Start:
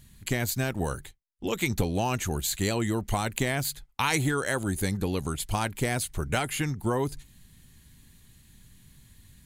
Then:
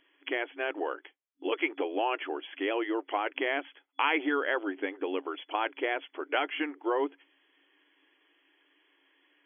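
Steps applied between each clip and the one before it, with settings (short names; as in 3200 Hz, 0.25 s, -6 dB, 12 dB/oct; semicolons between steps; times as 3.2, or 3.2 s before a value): FFT band-pass 270–3400 Hz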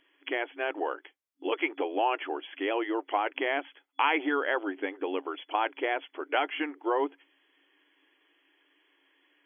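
dynamic EQ 830 Hz, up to +4 dB, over -41 dBFS, Q 1.9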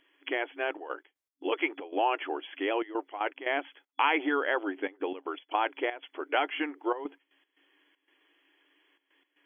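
step gate "xxxxxx.x.x.xxx.x" 117 bpm -12 dB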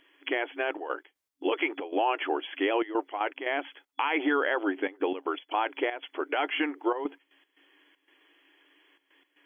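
limiter -21 dBFS, peak gain reduction 9.5 dB; gain +5 dB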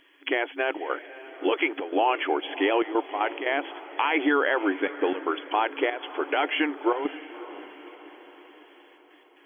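diffused feedback echo 0.578 s, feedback 51%, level -15 dB; gain +3.5 dB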